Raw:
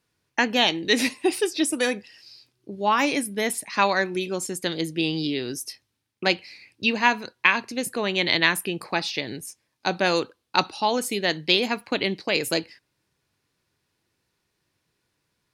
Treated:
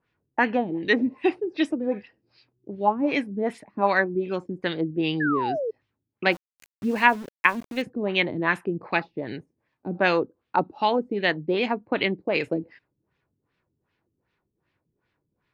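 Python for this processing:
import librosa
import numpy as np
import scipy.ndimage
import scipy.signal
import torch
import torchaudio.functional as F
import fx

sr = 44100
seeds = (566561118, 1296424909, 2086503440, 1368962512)

y = fx.filter_lfo_lowpass(x, sr, shape='sine', hz=2.6, low_hz=260.0, high_hz=2800.0, q=1.4)
y = fx.spec_paint(y, sr, seeds[0], shape='fall', start_s=5.2, length_s=0.51, low_hz=420.0, high_hz=1800.0, level_db=-27.0)
y = fx.sample_gate(y, sr, floor_db=-38.5, at=(6.31, 7.81), fade=0.02)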